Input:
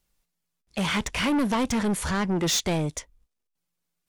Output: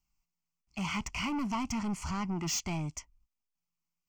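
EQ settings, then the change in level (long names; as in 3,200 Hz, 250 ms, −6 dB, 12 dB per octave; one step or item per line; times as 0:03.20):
phaser with its sweep stopped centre 2,500 Hz, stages 8
−6.0 dB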